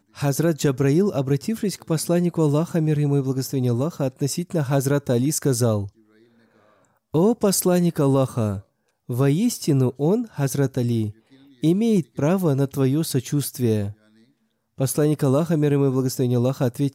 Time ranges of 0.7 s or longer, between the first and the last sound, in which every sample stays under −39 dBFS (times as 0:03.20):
0:05.89–0:07.14
0:13.92–0:14.78